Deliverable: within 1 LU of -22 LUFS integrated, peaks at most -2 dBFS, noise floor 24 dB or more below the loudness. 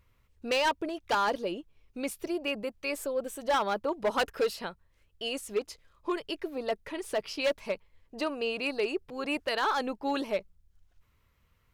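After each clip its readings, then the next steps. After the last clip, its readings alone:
clipped samples 1.3%; clipping level -22.0 dBFS; loudness -32.0 LUFS; peak level -22.0 dBFS; loudness target -22.0 LUFS
-> clip repair -22 dBFS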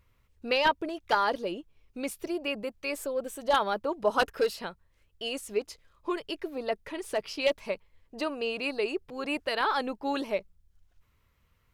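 clipped samples 0.0%; loudness -31.0 LUFS; peak level -13.0 dBFS; loudness target -22.0 LUFS
-> trim +9 dB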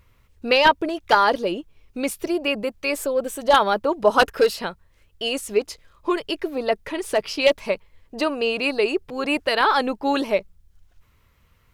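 loudness -22.0 LUFS; peak level -4.0 dBFS; noise floor -60 dBFS

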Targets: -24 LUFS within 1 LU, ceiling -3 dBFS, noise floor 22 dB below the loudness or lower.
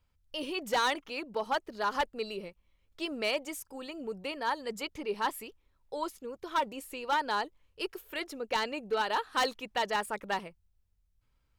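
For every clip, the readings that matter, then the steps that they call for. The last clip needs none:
clipped samples 0.8%; clipping level -23.0 dBFS; loudness -34.0 LUFS; peak level -23.0 dBFS; loudness target -24.0 LUFS
-> clip repair -23 dBFS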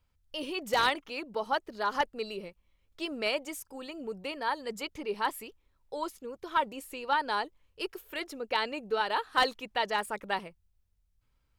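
clipped samples 0.0%; loudness -33.0 LUFS; peak level -14.0 dBFS; loudness target -24.0 LUFS
-> trim +9 dB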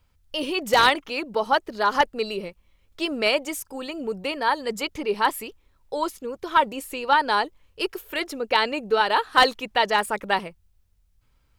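loudness -24.0 LUFS; peak level -5.0 dBFS; noise floor -64 dBFS

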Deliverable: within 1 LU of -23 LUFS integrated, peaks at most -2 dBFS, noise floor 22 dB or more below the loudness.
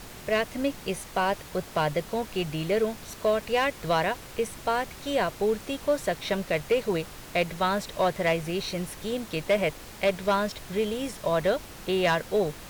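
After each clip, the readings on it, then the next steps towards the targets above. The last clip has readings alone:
clipped samples 0.5%; clipping level -16.5 dBFS; noise floor -44 dBFS; noise floor target -50 dBFS; loudness -28.0 LUFS; peak level -16.5 dBFS; loudness target -23.0 LUFS
-> clip repair -16.5 dBFS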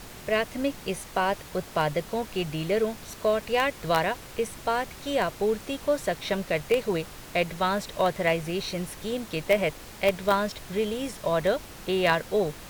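clipped samples 0.0%; noise floor -44 dBFS; noise floor target -50 dBFS
-> noise print and reduce 6 dB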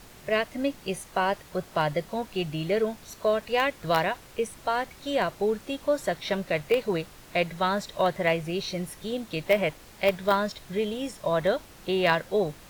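noise floor -50 dBFS; loudness -28.0 LUFS; peak level -7.5 dBFS; loudness target -23.0 LUFS
-> trim +5 dB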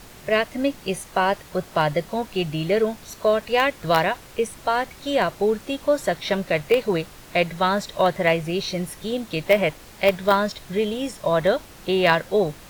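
loudness -23.0 LUFS; peak level -2.5 dBFS; noise floor -45 dBFS

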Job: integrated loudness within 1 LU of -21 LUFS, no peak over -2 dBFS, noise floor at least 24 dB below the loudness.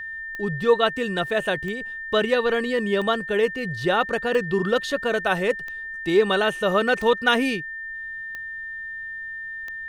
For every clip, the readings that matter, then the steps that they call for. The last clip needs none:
clicks found 8; steady tone 1.8 kHz; tone level -31 dBFS; loudness -23.5 LUFS; peak level -7.0 dBFS; loudness target -21.0 LUFS
-> de-click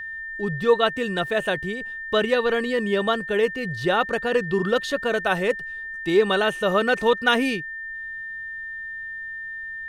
clicks found 0; steady tone 1.8 kHz; tone level -31 dBFS
-> band-stop 1.8 kHz, Q 30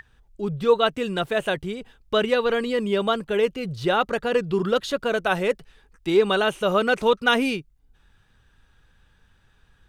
steady tone not found; loudness -23.0 LUFS; peak level -6.5 dBFS; loudness target -21.0 LUFS
-> trim +2 dB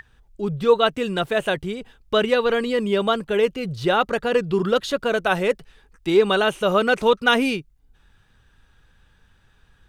loudness -21.0 LUFS; peak level -4.5 dBFS; noise floor -59 dBFS

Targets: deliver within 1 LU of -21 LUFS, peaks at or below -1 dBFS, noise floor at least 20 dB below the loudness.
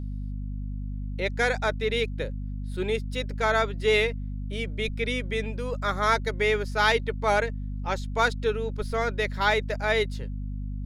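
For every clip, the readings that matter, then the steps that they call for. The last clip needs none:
hum 50 Hz; highest harmonic 250 Hz; hum level -30 dBFS; loudness -27.0 LUFS; peak level -8.0 dBFS; loudness target -21.0 LUFS
-> hum notches 50/100/150/200/250 Hz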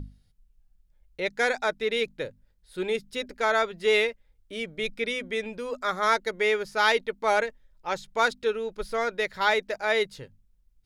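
hum not found; loudness -27.0 LUFS; peak level -8.0 dBFS; loudness target -21.0 LUFS
-> trim +6 dB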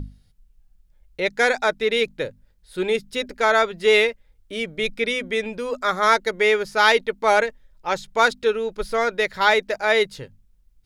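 loudness -21.0 LUFS; peak level -2.0 dBFS; noise floor -59 dBFS

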